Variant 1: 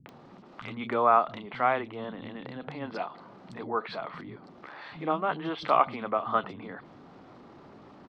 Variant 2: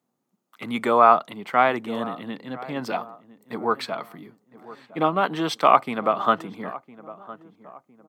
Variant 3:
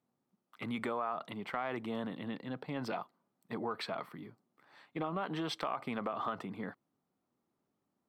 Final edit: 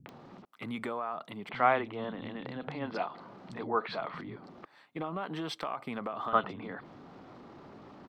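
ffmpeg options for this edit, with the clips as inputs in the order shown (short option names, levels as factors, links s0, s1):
-filter_complex "[2:a]asplit=2[s0][s1];[0:a]asplit=3[s2][s3][s4];[s2]atrim=end=0.452[s5];[s0]atrim=start=0.448:end=1.492[s6];[s3]atrim=start=1.488:end=4.652[s7];[s1]atrim=start=4.648:end=6.332[s8];[s4]atrim=start=6.328[s9];[s5][s6]acrossfade=d=0.004:c1=hsin:c2=hsin[s10];[s10][s7]acrossfade=d=0.004:c1=hsin:c2=hsin[s11];[s11][s8]acrossfade=d=0.004:c1=hsin:c2=hsin[s12];[s12][s9]acrossfade=d=0.004:c1=hsin:c2=hsin"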